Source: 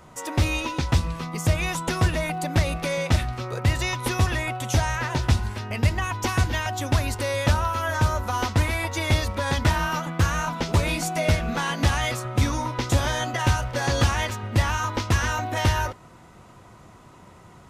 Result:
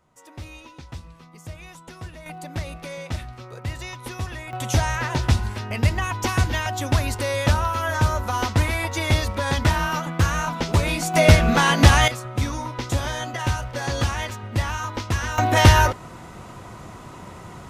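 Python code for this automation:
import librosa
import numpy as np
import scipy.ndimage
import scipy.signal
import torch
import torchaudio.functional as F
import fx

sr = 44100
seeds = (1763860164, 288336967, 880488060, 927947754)

y = fx.gain(x, sr, db=fx.steps((0.0, -16.0), (2.26, -8.5), (4.53, 1.5), (11.14, 8.5), (12.08, -2.5), (15.38, 9.0)))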